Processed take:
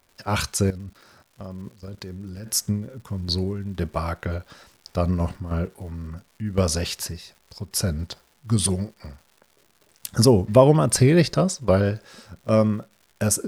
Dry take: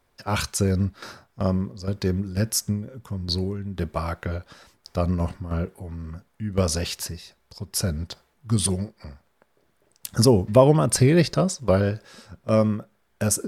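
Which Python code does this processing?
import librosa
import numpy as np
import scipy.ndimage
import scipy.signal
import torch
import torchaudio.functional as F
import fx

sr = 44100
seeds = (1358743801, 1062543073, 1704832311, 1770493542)

y = fx.level_steps(x, sr, step_db=18, at=(0.7, 2.47))
y = fx.dmg_crackle(y, sr, seeds[0], per_s=250.0, level_db=-45.0)
y = y * 10.0 ** (1.0 / 20.0)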